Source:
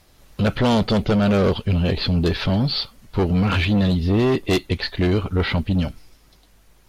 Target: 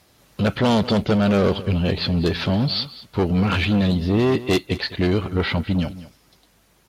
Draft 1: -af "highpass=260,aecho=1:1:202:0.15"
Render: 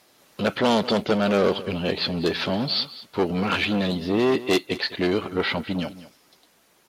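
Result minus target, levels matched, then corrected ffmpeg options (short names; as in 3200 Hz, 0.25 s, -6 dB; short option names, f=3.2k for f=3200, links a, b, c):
125 Hz band -7.5 dB
-af "highpass=90,aecho=1:1:202:0.15"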